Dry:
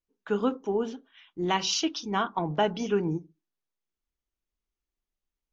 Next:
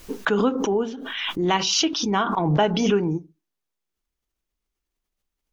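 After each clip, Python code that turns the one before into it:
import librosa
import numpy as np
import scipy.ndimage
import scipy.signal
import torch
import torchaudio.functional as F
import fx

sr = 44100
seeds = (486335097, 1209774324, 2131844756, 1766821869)

y = fx.pre_swell(x, sr, db_per_s=32.0)
y = y * librosa.db_to_amplitude(4.5)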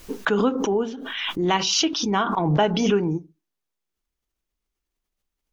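y = x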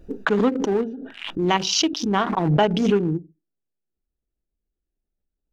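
y = fx.wiener(x, sr, points=41)
y = y * librosa.db_to_amplitude(2.0)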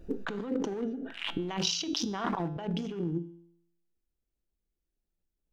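y = fx.over_compress(x, sr, threshold_db=-26.0, ratio=-1.0)
y = fx.comb_fb(y, sr, f0_hz=170.0, decay_s=0.74, harmonics='all', damping=0.0, mix_pct=60)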